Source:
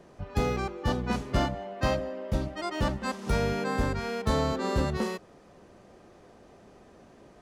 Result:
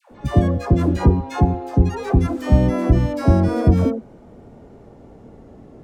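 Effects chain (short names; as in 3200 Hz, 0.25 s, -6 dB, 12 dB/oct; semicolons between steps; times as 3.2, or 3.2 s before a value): speed glide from 144% -> 110%; tilt shelf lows +10 dB, about 640 Hz; dispersion lows, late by 0.113 s, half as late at 750 Hz; gain +6 dB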